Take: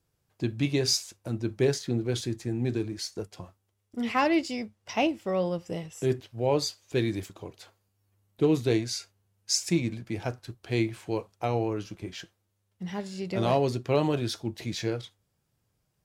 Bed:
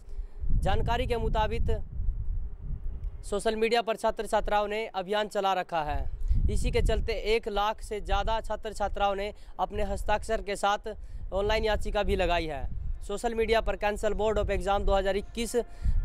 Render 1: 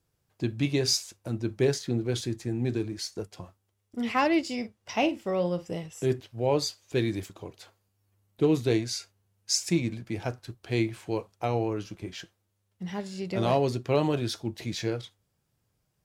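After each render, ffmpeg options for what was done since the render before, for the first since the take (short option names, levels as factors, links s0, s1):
-filter_complex "[0:a]asettb=1/sr,asplit=3[s0][s1][s2];[s0]atrim=end=4.424[s3];[s1]atrim=start=4.42:end=5.66,asetpts=PTS-STARTPTS,afade=t=in:d=0.004:c=qsin,afade=t=out:st=1.236:d=0.004:c=qsin,asplit=2[s4][s5];[s5]adelay=45,volume=0.251[s6];[s4][s6]amix=inputs=2:normalize=0,atrim=end_sample=54684[s7];[s2]atrim=start=5.656[s8];[s3][s7]acrossfade=d=0.004:c1=hsin:c2=qsin[s9];[s9][s8]acrossfade=d=0.004:c1=qsin:c2=hsin"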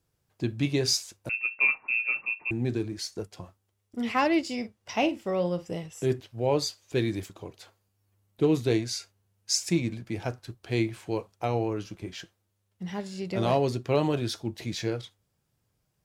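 -filter_complex "[0:a]asettb=1/sr,asplit=3[s0][s1][s2];[s0]atrim=end=1.294[s3];[s1]atrim=start=1.29:end=2.51,asetpts=PTS-STARTPTS,afade=t=in:d=0.004:c=qsin,afade=t=out:st=1.216:d=0.004:c=qsin,lowpass=f=2400:t=q:w=0.5098,lowpass=f=2400:t=q:w=0.6013,lowpass=f=2400:t=q:w=0.9,lowpass=f=2400:t=q:w=2.563,afreqshift=-2800[s4];[s2]atrim=start=2.506[s5];[s3][s4]acrossfade=d=0.004:c1=hsin:c2=qsin[s6];[s6][s5]acrossfade=d=0.004:c1=qsin:c2=hsin"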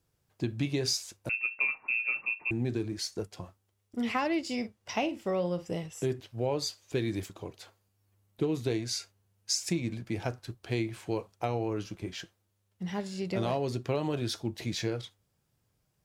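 -af "acompressor=threshold=0.0501:ratio=6"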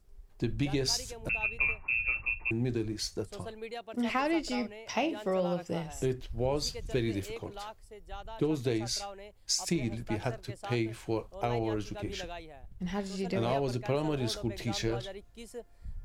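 -filter_complex "[1:a]volume=0.168[s0];[0:a][s0]amix=inputs=2:normalize=0"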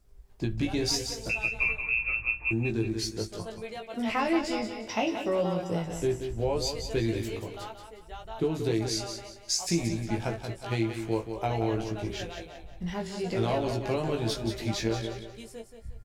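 -filter_complex "[0:a]asplit=2[s0][s1];[s1]adelay=18,volume=0.668[s2];[s0][s2]amix=inputs=2:normalize=0,aecho=1:1:179|358|537|716:0.398|0.135|0.046|0.0156"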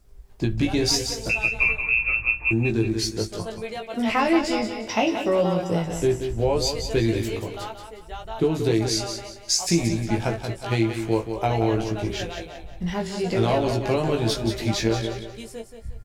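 -af "volume=2.11"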